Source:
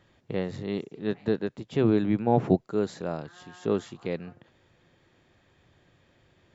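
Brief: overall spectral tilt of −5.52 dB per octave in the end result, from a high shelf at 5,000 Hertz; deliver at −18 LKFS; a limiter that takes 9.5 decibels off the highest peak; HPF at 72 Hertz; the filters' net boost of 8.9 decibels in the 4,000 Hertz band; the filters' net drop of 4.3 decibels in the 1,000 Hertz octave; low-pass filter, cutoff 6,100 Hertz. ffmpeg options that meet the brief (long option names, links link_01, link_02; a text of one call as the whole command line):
ffmpeg -i in.wav -af "highpass=72,lowpass=6100,equalizer=frequency=1000:width_type=o:gain=-7,equalizer=frequency=4000:width_type=o:gain=9,highshelf=frequency=5000:gain=6,volume=14dB,alimiter=limit=-4dB:level=0:latency=1" out.wav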